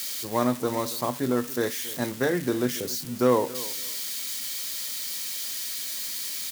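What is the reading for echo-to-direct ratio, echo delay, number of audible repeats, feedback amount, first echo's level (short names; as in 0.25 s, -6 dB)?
-18.0 dB, 0.277 s, 2, 21%, -18.0 dB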